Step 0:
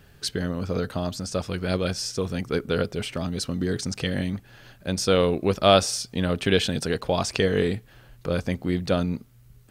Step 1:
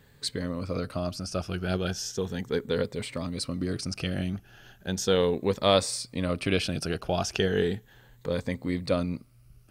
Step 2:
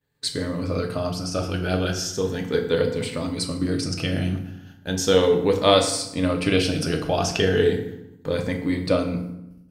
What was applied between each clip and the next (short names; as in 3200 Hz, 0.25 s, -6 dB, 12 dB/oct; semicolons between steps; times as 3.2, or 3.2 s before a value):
moving spectral ripple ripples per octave 1, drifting +0.36 Hz, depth 8 dB; gain -4.5 dB
expander -44 dBFS; low shelf 66 Hz -5.5 dB; FDN reverb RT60 0.84 s, low-frequency decay 1.4×, high-frequency decay 0.7×, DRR 2.5 dB; gain +4 dB